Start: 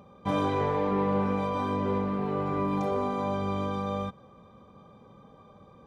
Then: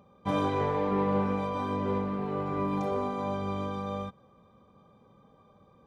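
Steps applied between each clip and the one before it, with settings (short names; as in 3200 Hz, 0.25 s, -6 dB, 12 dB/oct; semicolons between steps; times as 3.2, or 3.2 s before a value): upward expander 1.5:1, over -37 dBFS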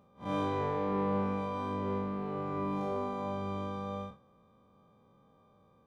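time blur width 0.101 s; gain -3.5 dB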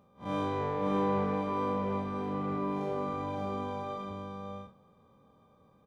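echo 0.565 s -3.5 dB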